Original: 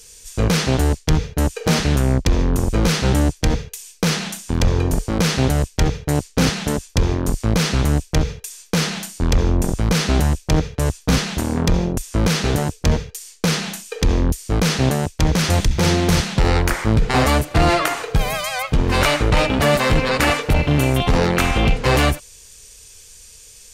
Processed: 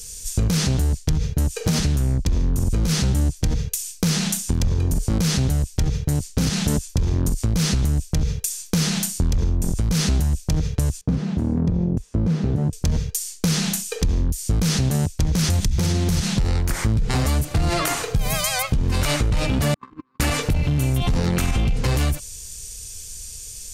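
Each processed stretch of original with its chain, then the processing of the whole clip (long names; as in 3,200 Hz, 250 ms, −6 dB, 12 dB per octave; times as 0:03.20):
0:11.01–0:12.73: downward compressor 2 to 1, threshold −22 dBFS + resonant band-pass 250 Hz, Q 0.53
0:19.74–0:20.20: pair of resonant band-passes 590 Hz, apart 1.8 octaves + noise gate −25 dBFS, range −37 dB
whole clip: bass and treble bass +12 dB, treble +10 dB; brickwall limiter −6.5 dBFS; downward compressor, threshold −15 dBFS; level −1.5 dB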